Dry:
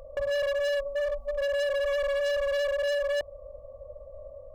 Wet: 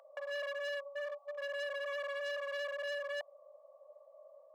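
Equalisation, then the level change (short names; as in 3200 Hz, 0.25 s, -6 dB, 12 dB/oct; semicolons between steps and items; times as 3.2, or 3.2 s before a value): steep high-pass 670 Hz 36 dB/oct; high shelf 3500 Hz -10 dB; -4.0 dB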